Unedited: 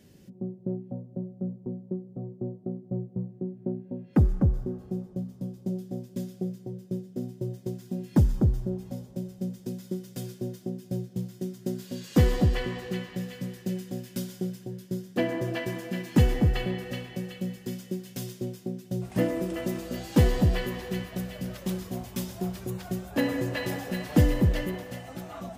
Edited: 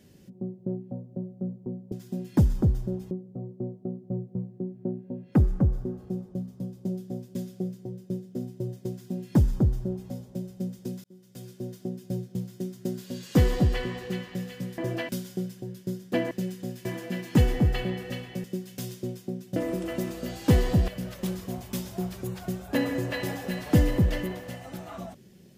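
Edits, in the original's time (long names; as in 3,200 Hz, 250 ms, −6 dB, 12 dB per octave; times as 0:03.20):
0:07.71–0:08.90: duplicate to 0:01.92
0:09.85–0:10.65: fade in
0:13.59–0:14.13: swap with 0:15.35–0:15.66
0:17.25–0:17.82: remove
0:18.94–0:19.24: remove
0:20.56–0:21.31: remove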